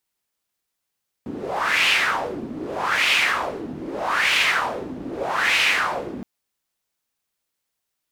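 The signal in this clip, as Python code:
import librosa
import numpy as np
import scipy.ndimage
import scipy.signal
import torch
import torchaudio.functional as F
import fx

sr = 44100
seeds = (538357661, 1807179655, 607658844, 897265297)

y = fx.wind(sr, seeds[0], length_s=4.97, low_hz=260.0, high_hz=2600.0, q=3.3, gusts=4, swing_db=14.0)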